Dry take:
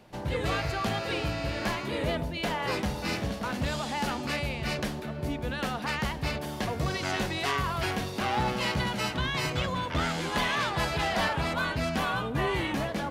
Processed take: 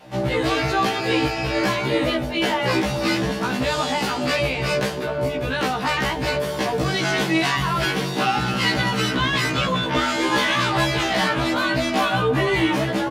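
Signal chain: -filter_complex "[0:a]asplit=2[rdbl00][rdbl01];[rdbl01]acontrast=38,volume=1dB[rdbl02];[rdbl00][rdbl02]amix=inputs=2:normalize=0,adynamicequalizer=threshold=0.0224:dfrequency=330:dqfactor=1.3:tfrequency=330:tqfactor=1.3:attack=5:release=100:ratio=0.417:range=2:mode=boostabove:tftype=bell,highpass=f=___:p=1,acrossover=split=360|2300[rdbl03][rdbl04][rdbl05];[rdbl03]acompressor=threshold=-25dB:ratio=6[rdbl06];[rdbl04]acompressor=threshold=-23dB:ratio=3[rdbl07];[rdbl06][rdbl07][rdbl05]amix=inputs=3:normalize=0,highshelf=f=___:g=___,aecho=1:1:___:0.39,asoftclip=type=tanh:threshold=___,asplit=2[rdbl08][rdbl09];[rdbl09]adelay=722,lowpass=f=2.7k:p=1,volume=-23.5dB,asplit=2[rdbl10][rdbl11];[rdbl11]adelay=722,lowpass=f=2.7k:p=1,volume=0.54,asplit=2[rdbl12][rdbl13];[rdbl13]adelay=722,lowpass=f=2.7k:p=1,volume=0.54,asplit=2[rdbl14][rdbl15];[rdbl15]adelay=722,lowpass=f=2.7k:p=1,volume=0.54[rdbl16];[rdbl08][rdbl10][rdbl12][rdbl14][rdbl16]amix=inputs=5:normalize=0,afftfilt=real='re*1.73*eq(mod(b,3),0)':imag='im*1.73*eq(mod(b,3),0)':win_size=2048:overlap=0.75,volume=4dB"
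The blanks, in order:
94, 5.9k, -5.5, 6.6, -12dB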